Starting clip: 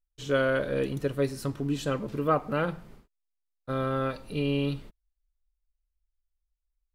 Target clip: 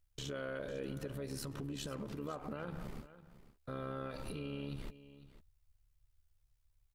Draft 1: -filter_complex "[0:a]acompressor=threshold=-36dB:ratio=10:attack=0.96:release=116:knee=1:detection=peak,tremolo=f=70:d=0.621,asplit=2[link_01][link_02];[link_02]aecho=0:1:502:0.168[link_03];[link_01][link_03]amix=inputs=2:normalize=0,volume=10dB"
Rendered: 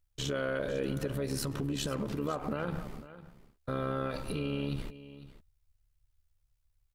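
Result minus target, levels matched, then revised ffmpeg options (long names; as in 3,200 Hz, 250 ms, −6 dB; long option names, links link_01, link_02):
downward compressor: peak gain reduction −8.5 dB
-filter_complex "[0:a]acompressor=threshold=-45.5dB:ratio=10:attack=0.96:release=116:knee=1:detection=peak,tremolo=f=70:d=0.621,asplit=2[link_01][link_02];[link_02]aecho=0:1:502:0.168[link_03];[link_01][link_03]amix=inputs=2:normalize=0,volume=10dB"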